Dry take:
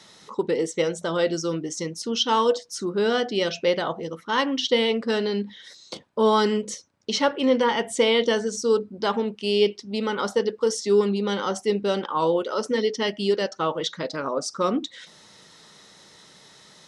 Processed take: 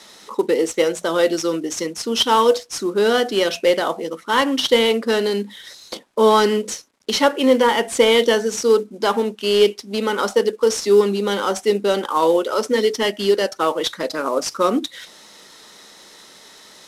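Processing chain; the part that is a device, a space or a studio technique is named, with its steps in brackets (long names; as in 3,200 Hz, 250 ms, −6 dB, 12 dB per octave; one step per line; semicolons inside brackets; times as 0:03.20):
early wireless headset (high-pass filter 220 Hz 24 dB per octave; variable-slope delta modulation 64 kbit/s)
level +6 dB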